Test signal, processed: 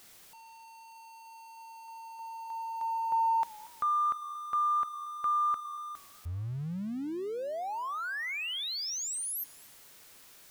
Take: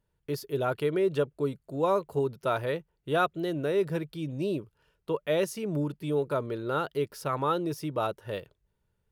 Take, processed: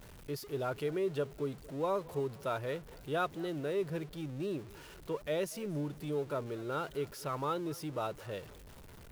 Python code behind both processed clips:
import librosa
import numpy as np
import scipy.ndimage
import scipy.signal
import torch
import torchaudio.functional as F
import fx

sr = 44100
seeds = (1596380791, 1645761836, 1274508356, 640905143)

y = x + 0.5 * 10.0 ** (-38.5 / 20.0) * np.sign(x)
y = fx.echo_warbled(y, sr, ms=231, feedback_pct=41, rate_hz=2.8, cents=120, wet_db=-22)
y = y * librosa.db_to_amplitude(-8.0)